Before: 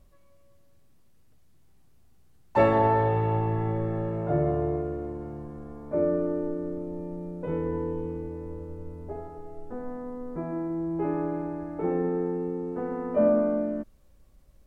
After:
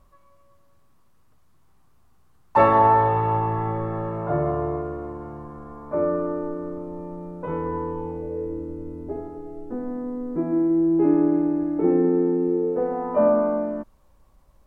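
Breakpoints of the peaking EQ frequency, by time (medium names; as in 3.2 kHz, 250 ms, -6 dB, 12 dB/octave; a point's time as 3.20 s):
peaking EQ +13 dB 0.85 oct
7.95 s 1.1 kHz
8.61 s 300 Hz
12.44 s 300 Hz
13.17 s 970 Hz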